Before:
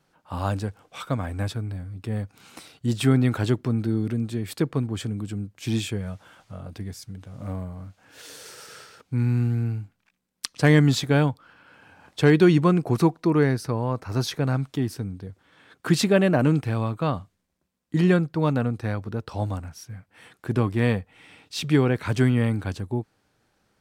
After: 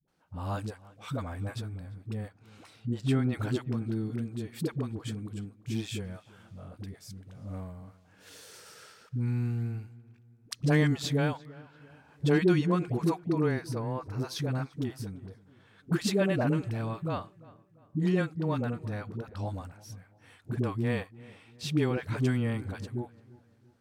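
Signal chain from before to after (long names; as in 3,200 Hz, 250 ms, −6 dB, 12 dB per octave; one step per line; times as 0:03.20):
0:02.20–0:03.25: low-pass filter 3,800 Hz 6 dB per octave
all-pass dispersion highs, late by 80 ms, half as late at 400 Hz
on a send: feedback echo with a low-pass in the loop 343 ms, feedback 43%, low-pass 2,800 Hz, level −21 dB
on the sum: level −7.5 dB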